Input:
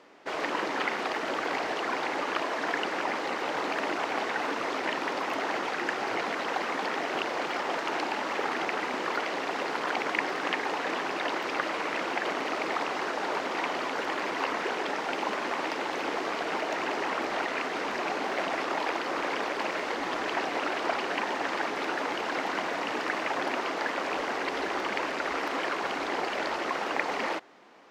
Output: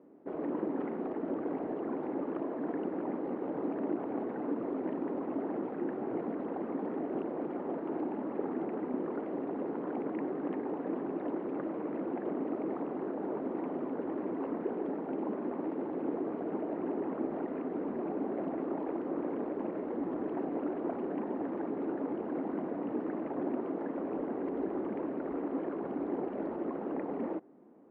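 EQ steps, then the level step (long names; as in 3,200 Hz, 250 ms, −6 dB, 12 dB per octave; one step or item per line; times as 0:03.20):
resonant band-pass 270 Hz, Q 1.3
high-frequency loss of the air 260 metres
spectral tilt −3 dB per octave
0.0 dB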